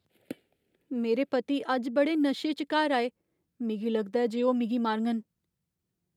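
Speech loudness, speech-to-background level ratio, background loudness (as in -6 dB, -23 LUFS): -29.0 LUFS, 16.5 dB, -45.5 LUFS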